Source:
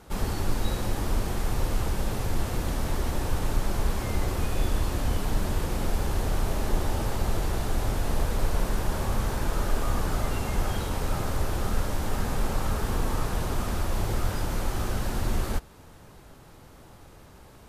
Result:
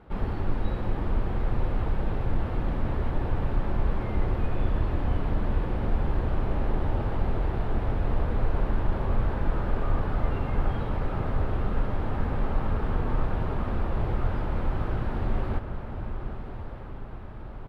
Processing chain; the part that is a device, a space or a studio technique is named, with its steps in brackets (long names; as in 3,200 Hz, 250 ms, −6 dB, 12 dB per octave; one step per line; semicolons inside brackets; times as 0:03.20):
shout across a valley (high-frequency loss of the air 480 metres; slap from a distant wall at 130 metres, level −9 dB)
feedback delay with all-pass diffusion 1,245 ms, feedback 62%, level −11 dB